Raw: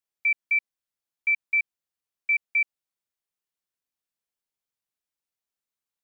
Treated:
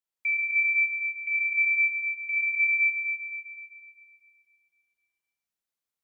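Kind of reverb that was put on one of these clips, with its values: Schroeder reverb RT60 2.4 s, combs from 33 ms, DRR -3 dB; gain -5 dB

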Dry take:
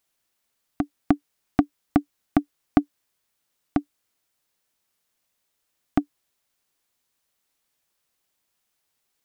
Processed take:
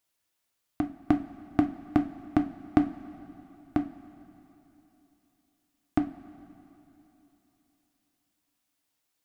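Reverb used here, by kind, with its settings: two-slope reverb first 0.28 s, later 3.4 s, from -18 dB, DRR 5 dB; gain -4.5 dB

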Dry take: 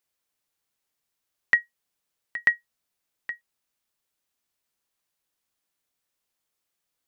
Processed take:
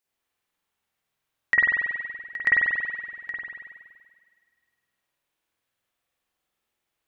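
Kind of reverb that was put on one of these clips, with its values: spring tank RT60 1.8 s, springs 47 ms, chirp 55 ms, DRR -7 dB; gain -3 dB

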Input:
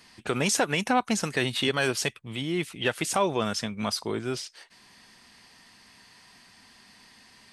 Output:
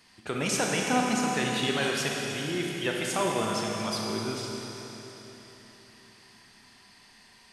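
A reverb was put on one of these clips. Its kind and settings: Schroeder reverb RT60 3.8 s, combs from 28 ms, DRR -1.5 dB; gain -5 dB

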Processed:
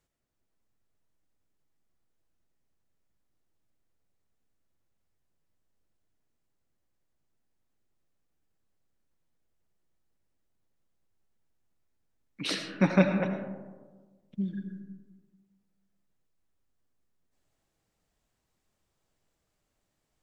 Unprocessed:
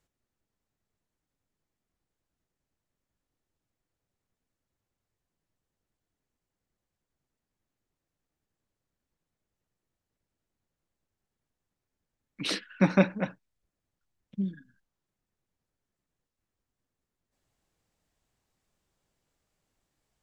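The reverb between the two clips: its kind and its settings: digital reverb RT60 1.4 s, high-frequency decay 0.3×, pre-delay 45 ms, DRR 5.5 dB; gain -1 dB

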